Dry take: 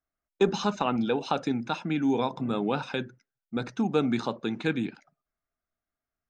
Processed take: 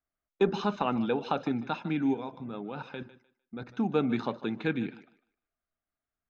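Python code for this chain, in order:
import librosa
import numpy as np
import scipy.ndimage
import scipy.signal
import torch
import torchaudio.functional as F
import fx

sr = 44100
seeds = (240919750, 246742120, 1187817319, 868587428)

y = scipy.signal.sosfilt(scipy.signal.butter(2, 3400.0, 'lowpass', fs=sr, output='sos'), x)
y = fx.level_steps(y, sr, step_db=12, at=(2.13, 3.7), fade=0.02)
y = fx.echo_thinned(y, sr, ms=151, feedback_pct=23, hz=270.0, wet_db=-16)
y = y * librosa.db_to_amplitude(-2.0)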